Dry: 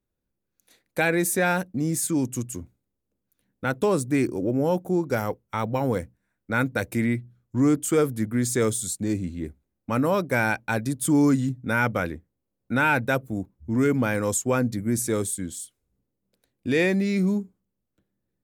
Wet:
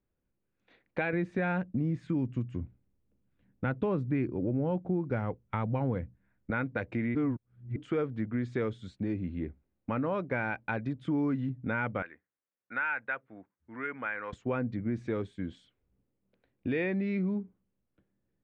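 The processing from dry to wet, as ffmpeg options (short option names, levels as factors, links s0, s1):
-filter_complex "[0:a]asettb=1/sr,asplit=3[s0][s1][s2];[s0]atrim=end=1.134[s3];[s1]atrim=start=1.13:end=6.51,asetpts=PTS-STARTPTS,afade=t=in:d=0.004:c=qsin,afade=t=out:st=5.376:d=0.004:c=qsin,bass=f=250:g=8,treble=f=4000:g=-2[s4];[s2]atrim=start=6.506[s5];[s3][s4]acrossfade=d=0.004:c1=hsin:c2=qsin[s6];[s6][s5]acrossfade=d=0.004:c1=qsin:c2=hsin,asettb=1/sr,asplit=3[s7][s8][s9];[s7]atrim=end=12.024[s10];[s8]atrim=start=12.02:end=14.33,asetpts=PTS-STARTPTS,afade=t=in:d=0.004:c=qsin,afade=t=out:st=2.306:d=0.004:c=qsin,bandpass=f=1700:t=q:w=1.7[s11];[s9]atrim=start=14.326[s12];[s10][s11]acrossfade=d=0.004:c1=hsin:c2=qsin[s13];[s13][s12]acrossfade=d=0.004:c1=qsin:c2=hsin,asplit=3[s14][s15][s16];[s14]atrim=end=7.152[s17];[s15]atrim=start=7.148:end=7.762,asetpts=PTS-STARTPTS,areverse[s18];[s16]atrim=start=7.758[s19];[s17][s18]acrossfade=d=0.004:c1=hsin:c2=hsin[s20];[s20][s19]acrossfade=d=0.004:c1=hsin:c2=hsin,acompressor=threshold=0.0251:ratio=2.5,lowpass=f=2900:w=0.5412,lowpass=f=2900:w=1.3066"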